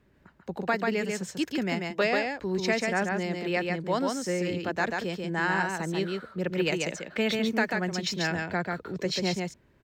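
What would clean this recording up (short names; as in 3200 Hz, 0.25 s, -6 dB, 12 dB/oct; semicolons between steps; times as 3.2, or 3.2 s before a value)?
inverse comb 0.14 s -3.5 dB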